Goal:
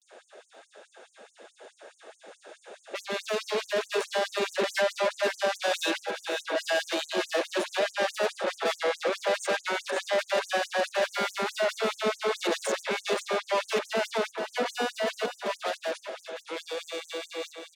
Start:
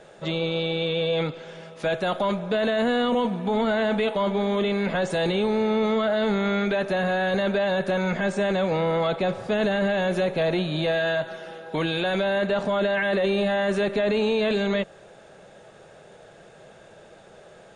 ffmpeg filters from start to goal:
-filter_complex "[0:a]areverse,asoftclip=type=tanh:threshold=-30.5dB,dynaudnorm=f=280:g=21:m=8dB,asplit=2[a][b];[b]aecho=0:1:527|1054|1581|2108:0.422|0.122|0.0355|0.0103[c];[a][c]amix=inputs=2:normalize=0,afftfilt=real='re*gte(b*sr/1024,210*pow(6200/210,0.5+0.5*sin(2*PI*4.7*pts/sr)))':imag='im*gte(b*sr/1024,210*pow(6200/210,0.5+0.5*sin(2*PI*4.7*pts/sr)))':win_size=1024:overlap=0.75"

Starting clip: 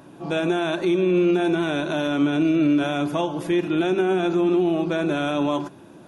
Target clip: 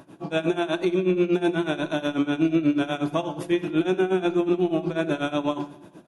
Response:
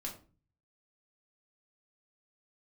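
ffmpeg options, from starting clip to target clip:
-filter_complex "[0:a]tremolo=f=8.2:d=0.9,aecho=1:1:86|172|258|344|430:0.0891|0.0526|0.031|0.0183|0.0108,asplit=2[a][b];[1:a]atrim=start_sample=2205,asetrate=26460,aresample=44100[c];[b][c]afir=irnorm=-1:irlink=0,volume=-15.5dB[d];[a][d]amix=inputs=2:normalize=0"

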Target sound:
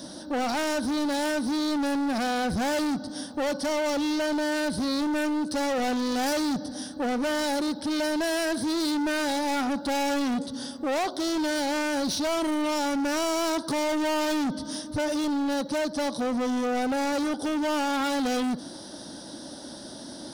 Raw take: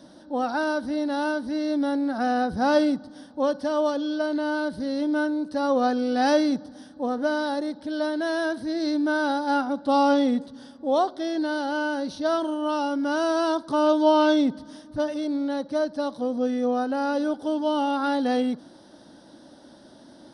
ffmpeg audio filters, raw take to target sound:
-filter_complex "[0:a]bass=f=250:g=1,treble=f=4k:g=12,asplit=2[a][b];[b]acompressor=threshold=-29dB:ratio=6,volume=-1dB[c];[a][c]amix=inputs=2:normalize=0,volume=26.5dB,asoftclip=hard,volume=-26.5dB,volume=1.5dB"

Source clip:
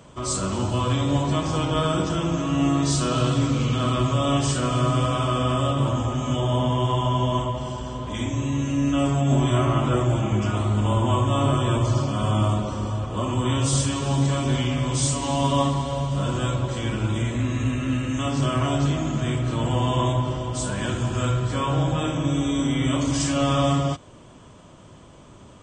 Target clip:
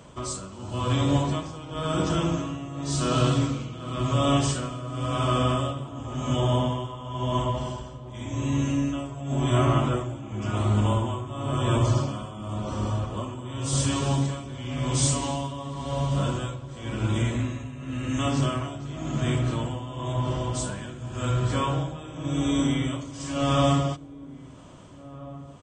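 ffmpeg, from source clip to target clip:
-filter_complex "[0:a]tremolo=f=0.93:d=0.84,asplit=2[a][b];[b]adelay=1633,volume=-18dB,highshelf=f=4k:g=-36.7[c];[a][c]amix=inputs=2:normalize=0"

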